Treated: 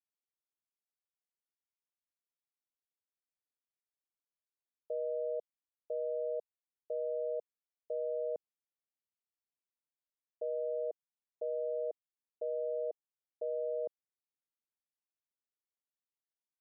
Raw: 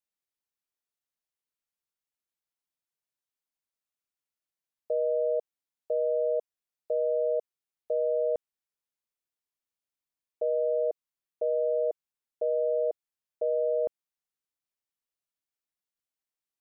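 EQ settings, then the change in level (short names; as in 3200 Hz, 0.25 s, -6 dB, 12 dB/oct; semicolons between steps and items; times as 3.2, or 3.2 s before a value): band-pass 410 Hz, Q 0.51; -8.5 dB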